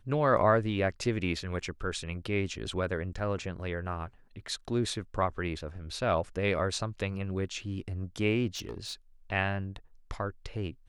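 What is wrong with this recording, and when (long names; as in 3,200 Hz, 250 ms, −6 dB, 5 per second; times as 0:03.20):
0:08.55–0:08.94: clipping −33.5 dBFS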